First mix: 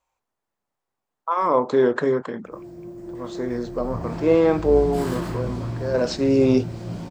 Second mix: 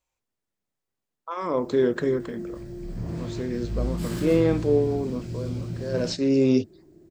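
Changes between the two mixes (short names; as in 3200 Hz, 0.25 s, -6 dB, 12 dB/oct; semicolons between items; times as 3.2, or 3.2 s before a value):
background: entry -0.95 s; master: add bell 920 Hz -11.5 dB 1.6 oct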